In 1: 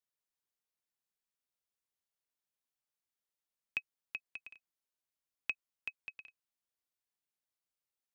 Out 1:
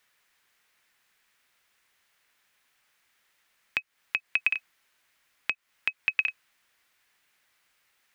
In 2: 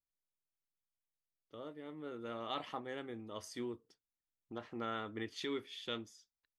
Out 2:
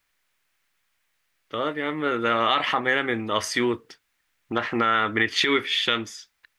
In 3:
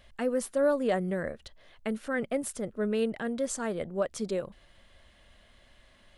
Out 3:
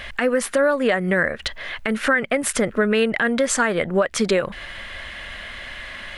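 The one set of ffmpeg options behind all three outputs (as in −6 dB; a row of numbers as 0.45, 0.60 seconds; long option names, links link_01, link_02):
-af "equalizer=frequency=1900:width_type=o:width=1.8:gain=13.5,acompressor=threshold=-33dB:ratio=8,alimiter=level_in=25.5dB:limit=-1dB:release=50:level=0:latency=1,volume=-8dB"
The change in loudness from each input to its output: +14.0, +20.0, +10.5 LU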